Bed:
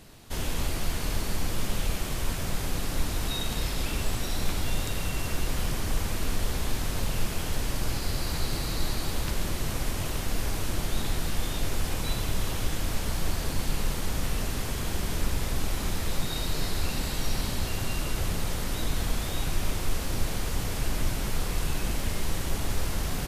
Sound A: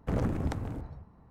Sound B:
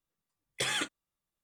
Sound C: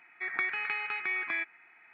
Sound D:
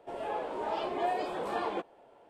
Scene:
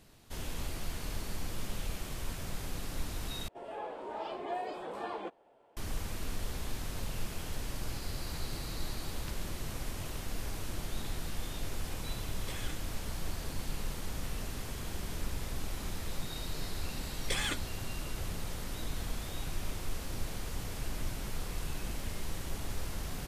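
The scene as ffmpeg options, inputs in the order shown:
-filter_complex "[2:a]asplit=2[a][b];[0:a]volume=-9dB,asplit=2[c][d];[c]atrim=end=3.484[e];[4:a]atrim=end=2.29,asetpts=PTS-STARTPTS,volume=-6dB[f];[d]atrim=start=5.766[g];[a]atrim=end=1.43,asetpts=PTS-STARTPTS,volume=-15dB,afade=t=in:d=0.004:c=hsin,afade=t=out:st=1.426:d=0.004:c=hsin,adelay=11880[h];[b]atrim=end=1.43,asetpts=PTS-STARTPTS,volume=-3dB,afade=t=in:d=0.004:c=hsin,afade=t=out:st=1.426:d=0.004:c=hsin,adelay=16700[i];[e][f]acrossfade=d=0.004:c1=hsin:c2=hsin[j];[j][g]acrossfade=d=0.004:c1=hsin:c2=hsin[k];[k][h][i]amix=inputs=3:normalize=0"

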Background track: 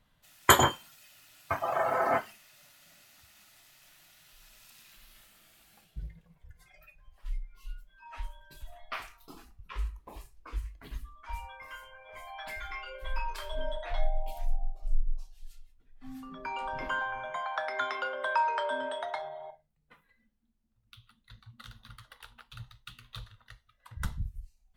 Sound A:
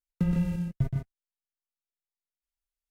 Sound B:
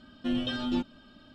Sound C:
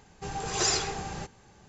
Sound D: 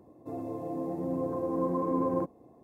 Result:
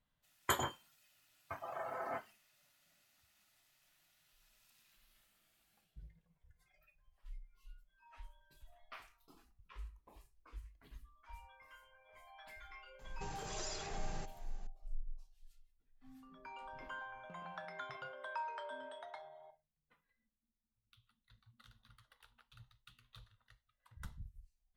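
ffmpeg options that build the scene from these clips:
-filter_complex "[0:a]volume=-14.5dB[a];[3:a]acompressor=threshold=-35dB:ratio=6:attack=3.2:release=140:knee=1:detection=peak[b];[1:a]asplit=3[c][d][e];[c]bandpass=f=730:t=q:w=8,volume=0dB[f];[d]bandpass=f=1.09k:t=q:w=8,volume=-6dB[g];[e]bandpass=f=2.44k:t=q:w=8,volume=-9dB[h];[f][g][h]amix=inputs=3:normalize=0[i];[b]atrim=end=1.68,asetpts=PTS-STARTPTS,volume=-6.5dB,afade=t=in:d=0.004:c=hsin,afade=t=out:st=1.676:d=0.004:c=hsin,adelay=12990[j];[i]atrim=end=2.9,asetpts=PTS-STARTPTS,volume=-6dB,afade=t=in:d=0.004:c=hsin,afade=t=out:st=2.896:d=0.004:c=hsin,adelay=17090[k];[a][j][k]amix=inputs=3:normalize=0"

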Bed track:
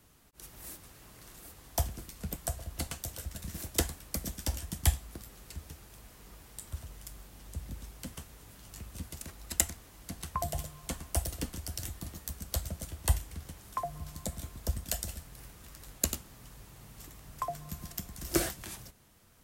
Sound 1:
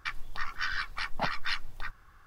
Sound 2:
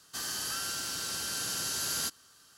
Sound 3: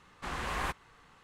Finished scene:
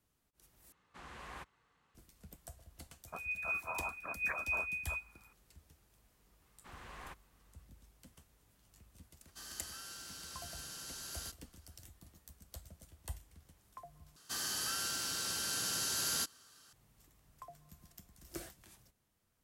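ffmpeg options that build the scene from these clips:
-filter_complex "[3:a]asplit=2[a][b];[2:a]asplit=2[c][d];[0:a]volume=-17dB[e];[a]highpass=44[f];[1:a]lowpass=f=2.1k:t=q:w=0.5098,lowpass=f=2.1k:t=q:w=0.6013,lowpass=f=2.1k:t=q:w=0.9,lowpass=f=2.1k:t=q:w=2.563,afreqshift=-2500[g];[e]asplit=3[h][i][j];[h]atrim=end=0.724[k];[f]atrim=end=1.23,asetpts=PTS-STARTPTS,volume=-14.5dB[l];[i]atrim=start=1.946:end=14.164[m];[d]atrim=end=2.57,asetpts=PTS-STARTPTS,volume=-2.5dB[n];[j]atrim=start=16.726[o];[g]atrim=end=2.26,asetpts=PTS-STARTPTS,volume=-9dB,afade=t=in:d=0.004:c=hsin,afade=t=out:st=2.256:d=0.004:c=hsin,adelay=3070[p];[b]atrim=end=1.23,asetpts=PTS-STARTPTS,volume=-16dB,afade=t=in:d=0.004:c=hsin,afade=t=out:st=1.226:d=0.004:c=hsin,adelay=283122S[q];[c]atrim=end=2.57,asetpts=PTS-STARTPTS,volume=-13.5dB,afade=t=in:d=0.004:c=hsin,afade=t=out:st=2.566:d=0.004:c=hsin,adelay=406602S[r];[k][l]acrossfade=d=0.004:c1=hsin:c2=hsin[s];[s][m]acrossfade=d=0.004:c1=hsin:c2=hsin[t];[t][n]acrossfade=d=0.004:c1=hsin:c2=hsin[u];[u][o]acrossfade=d=0.004:c1=hsin:c2=hsin[v];[v][p][q][r]amix=inputs=4:normalize=0"

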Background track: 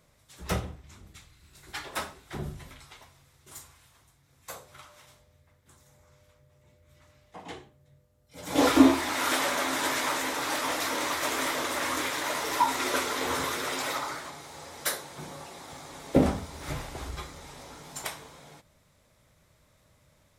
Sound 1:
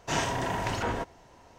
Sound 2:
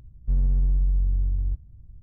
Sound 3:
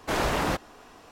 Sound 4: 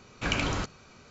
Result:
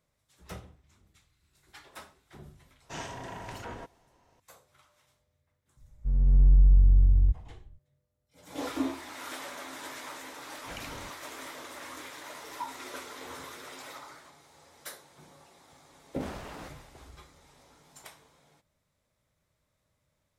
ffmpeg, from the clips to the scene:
-filter_complex "[0:a]volume=-13.5dB[a];[1:a]aresample=32000,aresample=44100[b];[2:a]dynaudnorm=f=110:g=9:m=15dB[c];[b]atrim=end=1.58,asetpts=PTS-STARTPTS,volume=-11dB,afade=t=in:d=0.004:c=hsin,afade=t=out:st=1.576:d=0.004:c=hsin,adelay=2820[d];[c]atrim=end=2.02,asetpts=PTS-STARTPTS,volume=-9.5dB,afade=t=in:d=0.004:c=hsin,afade=t=out:st=2.016:d=0.004:c=hsin,adelay=254457S[e];[4:a]atrim=end=1.1,asetpts=PTS-STARTPTS,volume=-15.5dB,afade=t=in:d=0.004:c=hsin,afade=t=out:st=1.096:d=0.004:c=hsin,adelay=10450[f];[3:a]atrim=end=1.11,asetpts=PTS-STARTPTS,volume=-17.5dB,afade=t=in:d=0.004:c=hsin,afade=t=out:st=1.106:d=0.004:c=hsin,adelay=16120[g];[a][d][e][f][g]amix=inputs=5:normalize=0"

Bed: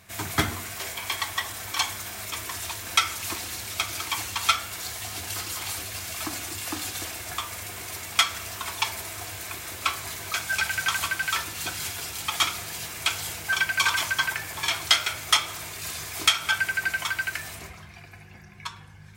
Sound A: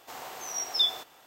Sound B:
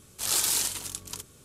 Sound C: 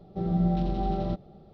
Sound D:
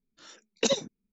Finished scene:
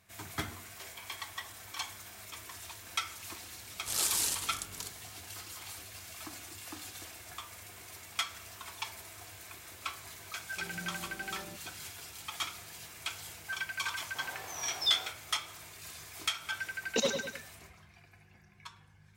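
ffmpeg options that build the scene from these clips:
-filter_complex "[0:a]volume=-13dB[a];[2:a]acontrast=59[b];[3:a]bandpass=f=520:t=q:w=0.66:csg=0[c];[1:a]flanger=delay=19.5:depth=3.5:speed=2.7[d];[4:a]aecho=1:1:101|202|303|404|505:0.473|0.199|0.0835|0.0351|0.0147[e];[b]atrim=end=1.44,asetpts=PTS-STARTPTS,volume=-11dB,afade=t=in:d=0.004:c=hsin,afade=t=out:st=1.436:d=0.004:c=hsin,adelay=3670[f];[c]atrim=end=1.53,asetpts=PTS-STARTPTS,volume=-15.5dB,afade=t=in:d=0.004:c=hsin,afade=t=out:st=1.526:d=0.004:c=hsin,adelay=10410[g];[d]atrim=end=1.26,asetpts=PTS-STARTPTS,volume=-1.5dB,afade=t=in:d=0.004:c=hsin,afade=t=out:st=1.256:d=0.004:c=hsin,adelay=14070[h];[e]atrim=end=1.12,asetpts=PTS-STARTPTS,volume=-5dB,afade=t=in:d=0.004:c=hsin,afade=t=out:st=1.116:d=0.004:c=hsin,adelay=16330[i];[a][f][g][h][i]amix=inputs=5:normalize=0"

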